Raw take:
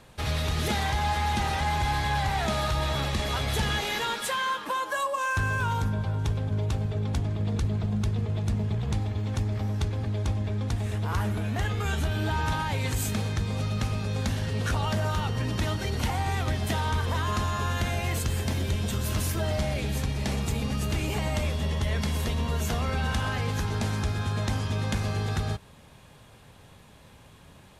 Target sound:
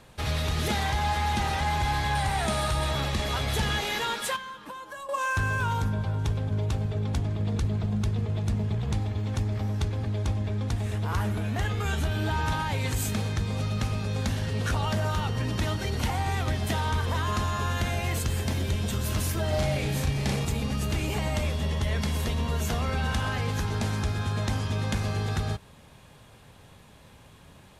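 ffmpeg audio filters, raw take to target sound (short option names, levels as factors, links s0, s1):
-filter_complex "[0:a]asettb=1/sr,asplit=3[s0][s1][s2];[s0]atrim=end=2.154[s3];[s1]atrim=start=2.15:end=2.91,asetpts=PTS-STARTPTS,afade=t=in:d=0.004:c=qsin,afade=t=out:st=0.756:d=0.004:c=qsin,equalizer=f=9000:w=4.7:g=12.5[s4];[s2]atrim=start=2.906[s5];[s3][s4]acrossfade=d=0.004:c1=hsin:c2=qsin[s6];[s6][s5]acrossfade=d=0.004:c1=qsin:c2=hsin,asettb=1/sr,asplit=3[s7][s8][s9];[s7]atrim=end=4.364[s10];[s8]atrim=start=4.36:end=5.09,asetpts=PTS-STARTPTS,afade=t=in:d=0.004:c=qsin,afade=t=out:st=0.726:d=0.004:c=qsin,acrossover=split=220[s11][s12];[s12]acompressor=threshold=0.00794:ratio=3[s13];[s11][s13]amix=inputs=2:normalize=0[s14];[s9]atrim=start=5.086[s15];[s10][s14]acrossfade=d=0.004:c1=hsin:c2=qsin[s16];[s16][s15]acrossfade=d=0.004:c1=qsin:c2=hsin,asettb=1/sr,asplit=3[s17][s18][s19];[s17]atrim=end=19.494[s20];[s18]atrim=start=19.49:end=20.45,asetpts=PTS-STARTPTS,afade=t=in:d=0.004:c=qsin,afade=t=out:st=0.956:d=0.004:c=qsin,asplit=2[s21][s22];[s22]adelay=36,volume=0.75[s23];[s21][s23]amix=inputs=2:normalize=0,atrim=end_sample=42336[s24];[s19]atrim=start=20.446[s25];[s20][s24]acrossfade=d=0.004:c1=hsin:c2=qsin[s26];[s26][s25]acrossfade=d=0.004:c1=qsin:c2=hsin"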